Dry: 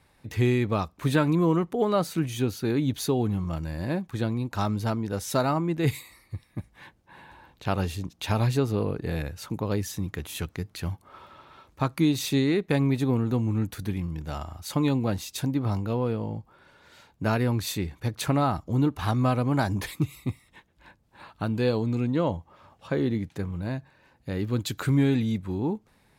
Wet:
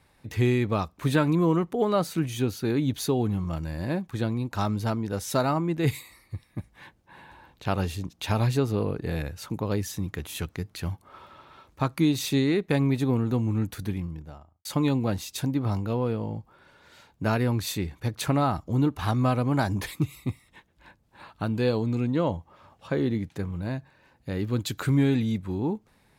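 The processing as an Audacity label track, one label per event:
13.810000	14.650000	fade out and dull

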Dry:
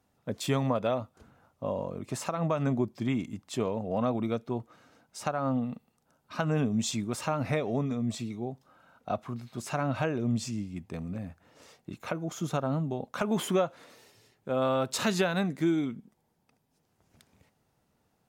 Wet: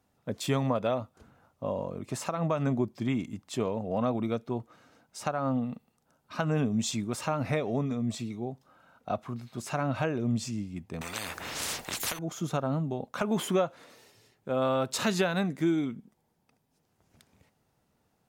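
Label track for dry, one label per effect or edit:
11.010000	12.190000	every bin compressed towards the loudest bin 10 to 1
15.530000	15.980000	notch filter 4,200 Hz

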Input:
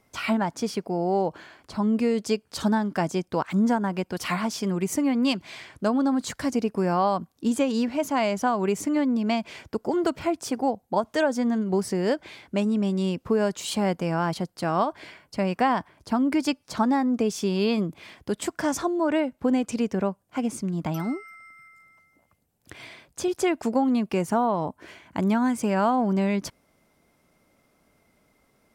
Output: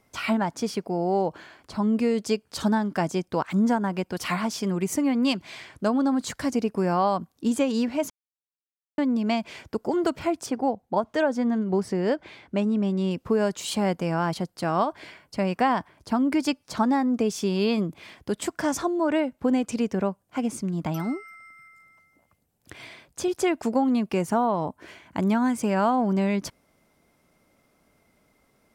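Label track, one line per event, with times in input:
8.100000	8.980000	silence
10.460000	13.110000	low-pass filter 3,100 Hz 6 dB per octave

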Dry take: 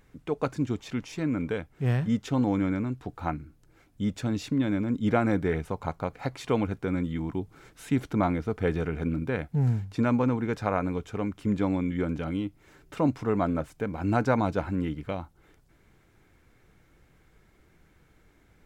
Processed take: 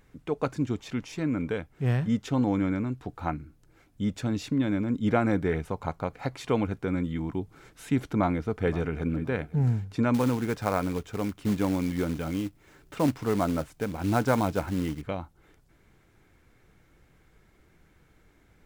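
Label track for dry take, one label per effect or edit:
8.130000	9.160000	delay throw 520 ms, feedback 15%, level −17.5 dB
10.140000	15.020000	floating-point word with a short mantissa of 2 bits

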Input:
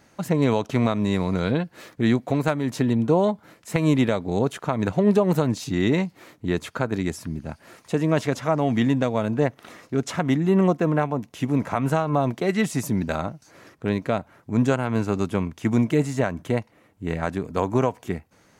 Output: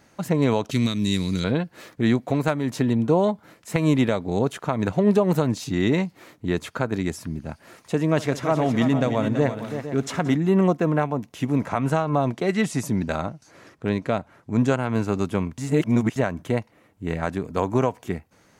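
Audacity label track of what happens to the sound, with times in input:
0.710000	1.440000	drawn EQ curve 300 Hz 0 dB, 740 Hz −18 dB, 4,100 Hz +10 dB
8.100000	10.350000	multi-tap delay 66/176/331/457 ms −19/−19.5/−9.5/−12.5 dB
11.660000	14.880000	low-pass filter 11,000 Hz
15.580000	16.160000	reverse

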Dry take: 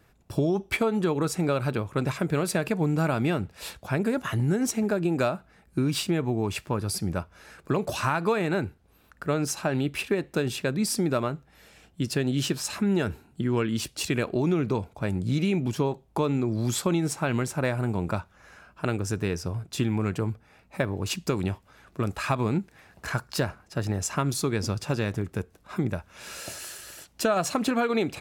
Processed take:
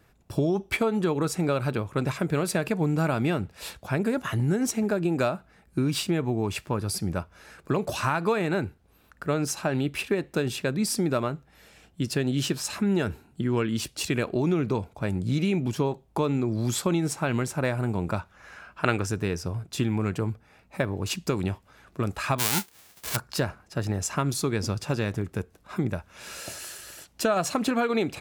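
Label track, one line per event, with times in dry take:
18.170000	19.050000	parametric band 1,900 Hz +2 dB → +10.5 dB 2.9 octaves
22.380000	23.150000	spectral envelope flattened exponent 0.1

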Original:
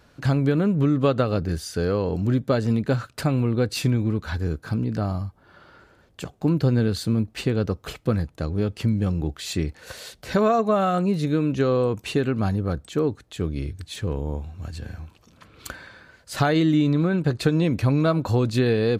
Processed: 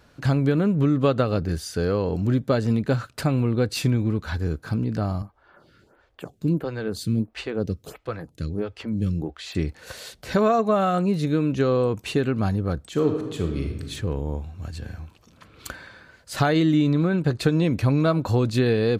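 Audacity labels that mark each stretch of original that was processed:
5.220000	9.550000	phaser with staggered stages 1.5 Hz
12.900000	13.820000	thrown reverb, RT60 1.3 s, DRR 3.5 dB

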